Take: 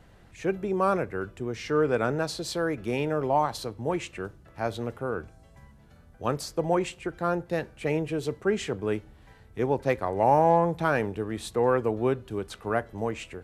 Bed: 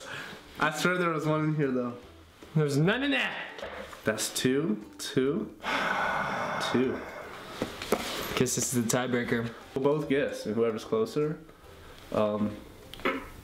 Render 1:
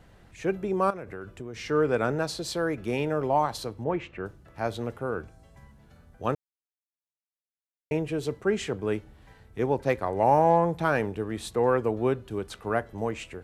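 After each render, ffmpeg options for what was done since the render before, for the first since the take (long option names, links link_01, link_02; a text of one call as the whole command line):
ffmpeg -i in.wav -filter_complex "[0:a]asettb=1/sr,asplit=3[link_01][link_02][link_03];[link_01]atrim=end=0.904[link_04];[link_02]atrim=start=0.9:end=1.7,asetpts=PTS-STARTPTS,afade=type=in:duration=0.004:curve=qsin,afade=type=out:start_time=0.796:duration=0.004:curve=qsin,acompressor=threshold=-33dB:ratio=8:attack=3.2:release=140:knee=1:detection=peak[link_05];[link_03]atrim=start=1.696[link_06];[link_04][link_05]acrossfade=duration=0.004:curve1=hsin:curve2=qsin[link_07];[link_07][link_06]acrossfade=duration=0.004:curve1=qsin:curve2=hsin,asettb=1/sr,asplit=3[link_08][link_09][link_10];[link_08]atrim=end=3.844[link_11];[link_09]atrim=start=3.84:end=4.26,asetpts=PTS-STARTPTS,afade=type=in:duration=0.004:curve=qsin,afade=type=out:start_time=0.416:duration=0.004:curve=qsin,lowpass=2400[link_12];[link_10]atrim=start=4.256[link_13];[link_11][link_12]acrossfade=duration=0.004:curve1=hsin:curve2=qsin[link_14];[link_14][link_13]acrossfade=duration=0.004:curve1=qsin:curve2=hsin,asplit=3[link_15][link_16][link_17];[link_15]atrim=end=6.35,asetpts=PTS-STARTPTS,afade=type=out:start_time=6.346:duration=0.004:curve=hsin[link_18];[link_16]atrim=start=6.35:end=7.91,asetpts=PTS-STARTPTS,volume=0[link_19];[link_17]atrim=start=7.91,asetpts=PTS-STARTPTS,afade=type=in:duration=0.004:curve=hsin[link_20];[link_18][link_19][link_20]concat=n=3:v=0:a=1" out.wav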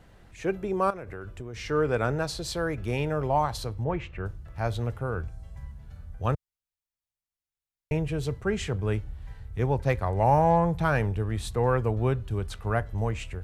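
ffmpeg -i in.wav -af "asubboost=boost=8:cutoff=99" out.wav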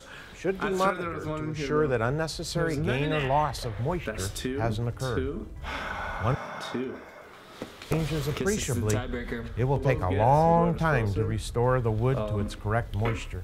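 ffmpeg -i in.wav -i bed.wav -filter_complex "[1:a]volume=-5.5dB[link_01];[0:a][link_01]amix=inputs=2:normalize=0" out.wav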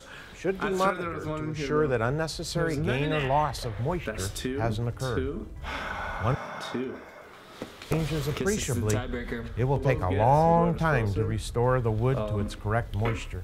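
ffmpeg -i in.wav -af anull out.wav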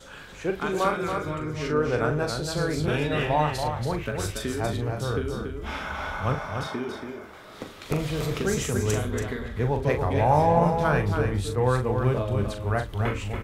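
ffmpeg -i in.wav -filter_complex "[0:a]asplit=2[link_01][link_02];[link_02]adelay=40,volume=-7.5dB[link_03];[link_01][link_03]amix=inputs=2:normalize=0,asplit=2[link_04][link_05];[link_05]aecho=0:1:282:0.501[link_06];[link_04][link_06]amix=inputs=2:normalize=0" out.wav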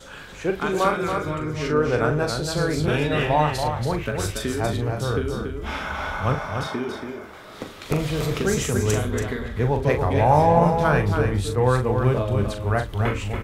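ffmpeg -i in.wav -af "volume=3.5dB" out.wav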